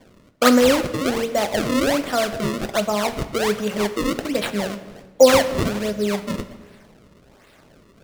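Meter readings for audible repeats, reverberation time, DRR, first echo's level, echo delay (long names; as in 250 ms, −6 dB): no echo audible, 1.4 s, 10.0 dB, no echo audible, no echo audible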